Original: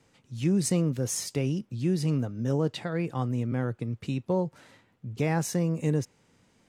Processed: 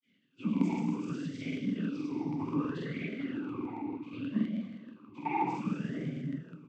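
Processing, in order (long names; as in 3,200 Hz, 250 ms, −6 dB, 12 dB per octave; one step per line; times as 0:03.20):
lower of the sound and its delayed copy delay 1.3 ms
granular cloud
double-tracking delay 21 ms −3 dB
dense smooth reverb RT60 1.9 s, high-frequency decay 0.95×, DRR −0.5 dB
cochlear-implant simulation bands 16
regular buffer underruns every 0.16 s, samples 2,048, repeat, from 0:00.52
formant filter swept between two vowels i-u 0.65 Hz
level +5 dB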